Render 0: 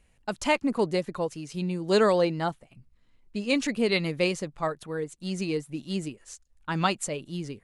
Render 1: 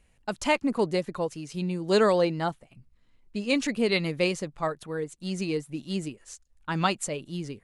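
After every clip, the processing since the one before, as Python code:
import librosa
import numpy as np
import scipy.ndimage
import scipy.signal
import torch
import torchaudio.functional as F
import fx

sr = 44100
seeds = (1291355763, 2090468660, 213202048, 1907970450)

y = x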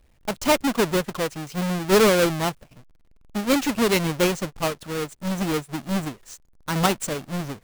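y = fx.halfwave_hold(x, sr)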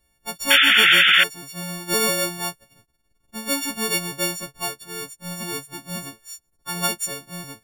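y = fx.freq_snap(x, sr, grid_st=4)
y = fx.spec_paint(y, sr, seeds[0], shape='noise', start_s=0.5, length_s=0.74, low_hz=1300.0, high_hz=3600.0, level_db=-6.0)
y = F.gain(torch.from_numpy(y), -8.5).numpy()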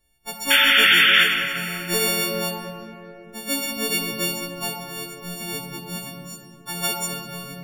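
y = fx.room_shoebox(x, sr, seeds[1], volume_m3=140.0, walls='hard', distance_m=0.38)
y = F.gain(torch.from_numpy(y), -2.5).numpy()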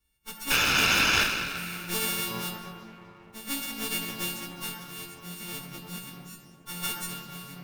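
y = fx.lower_of_two(x, sr, delay_ms=0.76)
y = F.gain(torch.from_numpy(y), -6.0).numpy()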